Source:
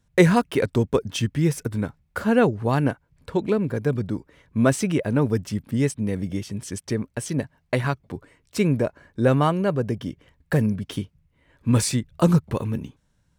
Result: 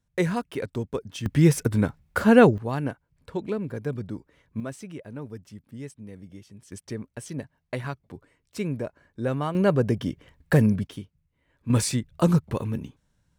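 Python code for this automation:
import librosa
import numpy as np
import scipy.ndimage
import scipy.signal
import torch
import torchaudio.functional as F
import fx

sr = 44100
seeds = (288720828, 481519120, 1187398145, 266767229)

y = fx.gain(x, sr, db=fx.steps((0.0, -9.0), (1.26, 3.5), (2.58, -7.0), (4.6, -16.5), (6.72, -8.5), (9.55, 2.0), (10.87, -9.0), (11.7, -2.5)))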